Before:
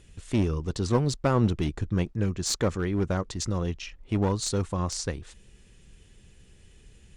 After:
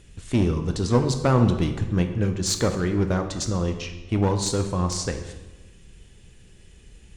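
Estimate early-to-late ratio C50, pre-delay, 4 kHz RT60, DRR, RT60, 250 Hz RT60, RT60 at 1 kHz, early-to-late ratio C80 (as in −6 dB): 8.5 dB, 10 ms, 0.85 s, 6.0 dB, 1.1 s, 1.3 s, 1.1 s, 11.0 dB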